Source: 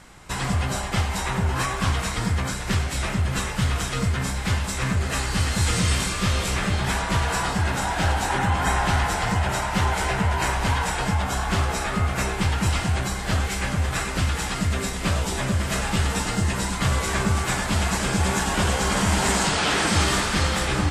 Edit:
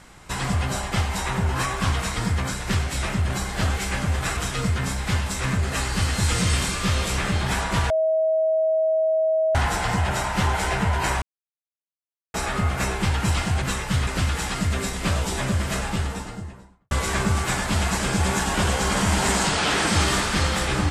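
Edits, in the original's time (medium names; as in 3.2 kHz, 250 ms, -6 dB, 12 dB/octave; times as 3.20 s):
3.30–3.75 s: swap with 13.00–14.07 s
7.28–8.93 s: bleep 638 Hz -17.5 dBFS
10.60–11.72 s: mute
15.53–16.91 s: studio fade out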